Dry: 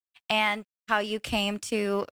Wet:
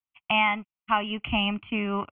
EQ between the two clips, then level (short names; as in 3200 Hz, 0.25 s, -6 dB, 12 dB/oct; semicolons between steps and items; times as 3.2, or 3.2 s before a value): steep low-pass 3500 Hz 96 dB/oct; air absorption 69 m; fixed phaser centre 2500 Hz, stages 8; +5.0 dB